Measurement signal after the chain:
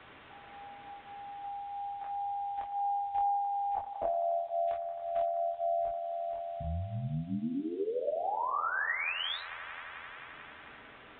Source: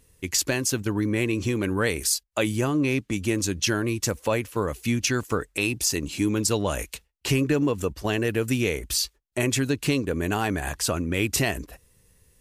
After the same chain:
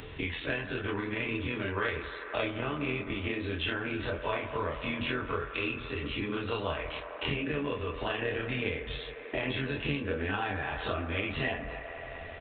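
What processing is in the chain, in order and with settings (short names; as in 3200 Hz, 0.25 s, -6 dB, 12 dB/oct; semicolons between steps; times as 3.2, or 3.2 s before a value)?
spectral dilation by 60 ms; notches 60/120/180/240/300 Hz; dynamic EQ 240 Hz, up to -6 dB, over -36 dBFS, Q 0.86; in parallel at +3 dB: compressor 8:1, threshold -36 dBFS; on the sum: chorus voices 6, 0.18 Hz, delay 23 ms, depth 2.9 ms; on a send: band-limited delay 88 ms, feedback 81%, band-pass 960 Hz, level -12 dB; on the sum: AM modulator 84 Hz, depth 50%; requantised 10-bit, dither triangular; notch comb 180 Hz; downsampling 8000 Hz; three-band squash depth 70%; gain -3.5 dB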